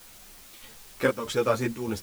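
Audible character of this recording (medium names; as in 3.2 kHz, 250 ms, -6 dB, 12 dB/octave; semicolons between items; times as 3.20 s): chopped level 1.6 Hz, depth 60%, duty 75%; a quantiser's noise floor 8-bit, dither triangular; a shimmering, thickened sound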